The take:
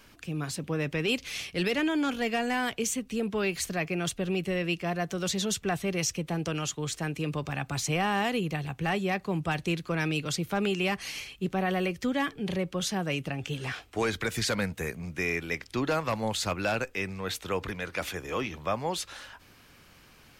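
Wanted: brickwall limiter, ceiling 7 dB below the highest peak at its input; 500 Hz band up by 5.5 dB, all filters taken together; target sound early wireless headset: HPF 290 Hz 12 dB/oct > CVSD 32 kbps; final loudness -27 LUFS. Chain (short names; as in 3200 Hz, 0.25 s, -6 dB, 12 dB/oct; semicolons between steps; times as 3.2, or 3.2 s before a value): bell 500 Hz +7.5 dB; limiter -20.5 dBFS; HPF 290 Hz 12 dB/oct; CVSD 32 kbps; gain +5.5 dB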